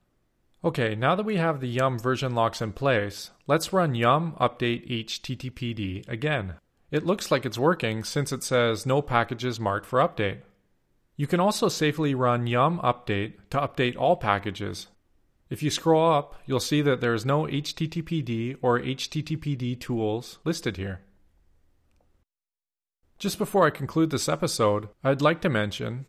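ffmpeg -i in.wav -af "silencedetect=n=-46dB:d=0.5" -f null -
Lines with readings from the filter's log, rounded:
silence_start: 0.00
silence_end: 0.63 | silence_duration: 0.63
silence_start: 10.42
silence_end: 11.19 | silence_duration: 0.77
silence_start: 14.86
silence_end: 15.51 | silence_duration: 0.64
silence_start: 21.00
silence_end: 23.20 | silence_duration: 2.20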